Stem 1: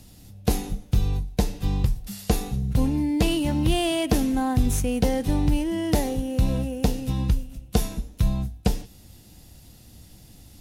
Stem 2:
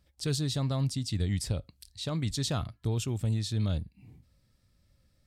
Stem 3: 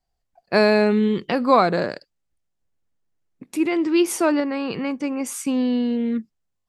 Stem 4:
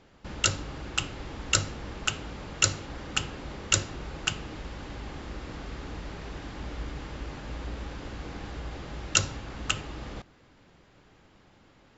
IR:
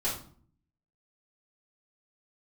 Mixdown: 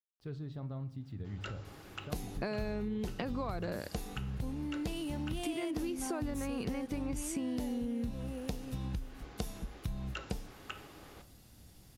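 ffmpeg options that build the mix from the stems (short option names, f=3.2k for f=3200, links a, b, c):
-filter_complex "[0:a]adelay=1650,volume=-9.5dB[a];[1:a]lowpass=1.6k,aeval=exprs='val(0)*gte(abs(val(0)),0.00133)':c=same,volume=-12.5dB,asplit=3[b][c][d];[c]volume=-15.5dB[e];[2:a]lowshelf=f=160:g=10.5,acompressor=threshold=-23dB:ratio=6,adelay=1900,volume=-2.5dB[f];[3:a]highpass=230,acrossover=split=2900[g][h];[h]acompressor=threshold=-47dB:ratio=4:attack=1:release=60[i];[g][i]amix=inputs=2:normalize=0,adelay=1000,volume=-12.5dB,asplit=2[j][k];[k]volume=-14.5dB[l];[d]apad=whole_len=572199[m];[j][m]sidechaincompress=threshold=-47dB:ratio=8:attack=16:release=170[n];[4:a]atrim=start_sample=2205[o];[e][l]amix=inputs=2:normalize=0[p];[p][o]afir=irnorm=-1:irlink=0[q];[a][b][f][n][q]amix=inputs=5:normalize=0,acompressor=threshold=-35dB:ratio=4"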